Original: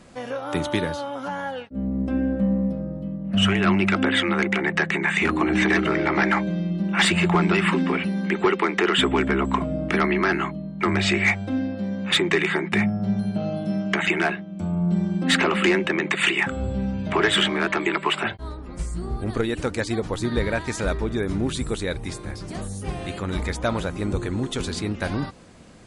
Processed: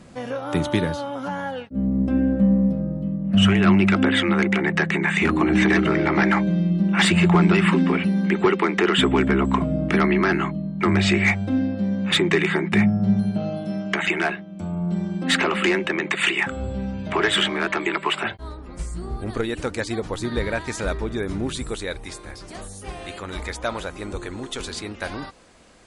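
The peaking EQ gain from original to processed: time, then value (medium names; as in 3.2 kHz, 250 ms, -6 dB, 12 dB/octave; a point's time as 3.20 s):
peaking EQ 140 Hz 2.2 oct
13.14 s +5.5 dB
13.65 s -3 dB
21.48 s -3 dB
22.07 s -11.5 dB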